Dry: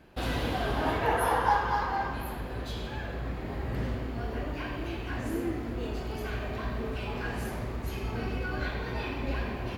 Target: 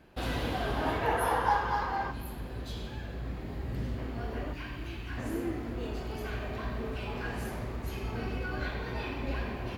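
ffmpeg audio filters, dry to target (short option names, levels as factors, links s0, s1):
-filter_complex "[0:a]asettb=1/sr,asplit=3[s0][s1][s2];[s0]atrim=end=2.114[s3];[s1]atrim=start=2.11:end=3.98,asetpts=PTS-STARTPTS,afade=t=in:d=0.004:c=qsin,afade=t=out:st=1.866:d=0.004:c=qsin,acrossover=split=360|3000[s4][s5][s6];[s5]acompressor=threshold=0.00562:ratio=6[s7];[s4][s7][s6]amix=inputs=3:normalize=0[s8];[s2]atrim=start=3.976[s9];[s3][s8]acrossfade=d=0.004:c1=hsin:c2=qsin[s10];[s10][s9]acrossfade=d=0.004:c1=qsin:c2=hsin,asettb=1/sr,asplit=3[s11][s12][s13];[s11]atrim=end=4.534[s14];[s12]atrim=start=4.53:end=5.18,asetpts=PTS-STARTPTS,afade=t=in:d=0.004:c=qsin,afade=t=out:st=0.646:d=0.004:c=qsin,equalizer=f=560:w=0.72:g=-9[s15];[s13]atrim=start=5.176[s16];[s14][s15]acrossfade=d=0.004:c1=hsin:c2=qsin[s17];[s17][s16]acrossfade=d=0.004:c1=qsin:c2=hsin,volume=0.794"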